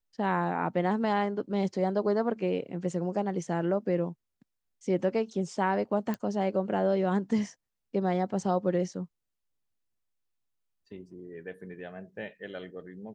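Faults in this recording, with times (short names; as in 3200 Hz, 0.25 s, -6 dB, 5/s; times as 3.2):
6.14 pop -20 dBFS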